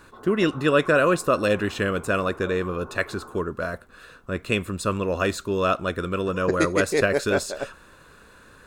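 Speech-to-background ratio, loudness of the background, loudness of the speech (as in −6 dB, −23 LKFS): 19.0 dB, −43.0 LKFS, −24.0 LKFS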